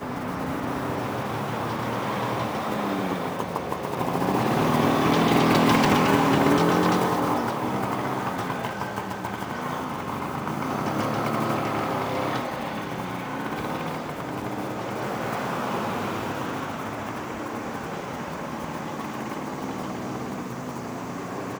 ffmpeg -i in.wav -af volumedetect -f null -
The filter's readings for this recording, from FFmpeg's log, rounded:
mean_volume: -26.2 dB
max_volume: -7.2 dB